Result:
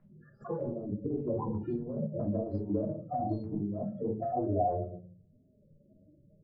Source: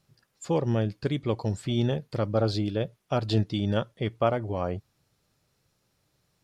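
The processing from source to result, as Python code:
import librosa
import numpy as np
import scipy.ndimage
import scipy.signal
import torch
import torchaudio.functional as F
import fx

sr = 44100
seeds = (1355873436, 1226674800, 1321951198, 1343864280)

y = fx.transient(x, sr, attack_db=-8, sustain_db=1)
y = fx.spec_topn(y, sr, count=8)
y = fx.over_compress(y, sr, threshold_db=-32.0, ratio=-0.5)
y = fx.room_shoebox(y, sr, seeds[0], volume_m3=300.0, walls='furnished', distance_m=3.0)
y = fx.formant_shift(y, sr, semitones=3)
y = fx.high_shelf(y, sr, hz=3400.0, db=-10.5)
y = fx.hum_notches(y, sr, base_hz=60, count=3)
y = fx.filter_lfo_lowpass(y, sr, shape='sine', hz=3.6, low_hz=870.0, high_hz=3300.0, q=1.8)
y = fx.low_shelf(y, sr, hz=200.0, db=-10.0)
y = fx.band_squash(y, sr, depth_pct=40)
y = F.gain(torch.from_numpy(y), -2.5).numpy()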